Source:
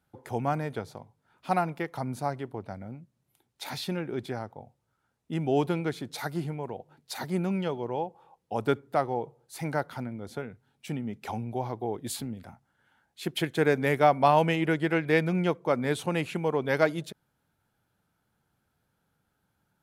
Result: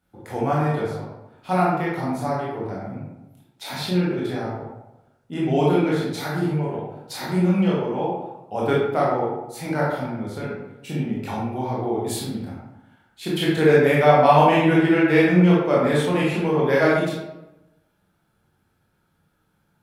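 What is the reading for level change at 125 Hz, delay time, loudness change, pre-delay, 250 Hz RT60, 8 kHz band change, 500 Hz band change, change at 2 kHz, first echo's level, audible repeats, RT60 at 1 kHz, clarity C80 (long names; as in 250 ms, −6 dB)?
+9.0 dB, no echo audible, +8.5 dB, 18 ms, 1.1 s, +4.5 dB, +8.5 dB, +7.0 dB, no echo audible, no echo audible, 0.95 s, 3.5 dB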